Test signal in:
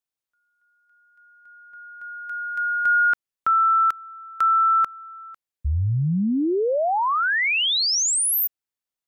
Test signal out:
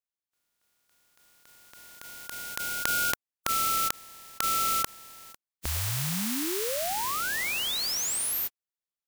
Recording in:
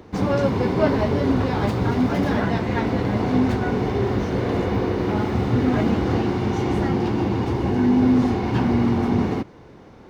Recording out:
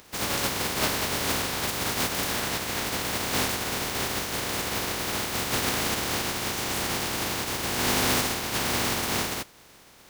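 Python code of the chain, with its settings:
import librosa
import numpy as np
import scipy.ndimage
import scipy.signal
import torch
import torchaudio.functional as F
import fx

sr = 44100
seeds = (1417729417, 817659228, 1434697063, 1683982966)

y = fx.spec_flatten(x, sr, power=0.26)
y = F.gain(torch.from_numpy(y), -7.5).numpy()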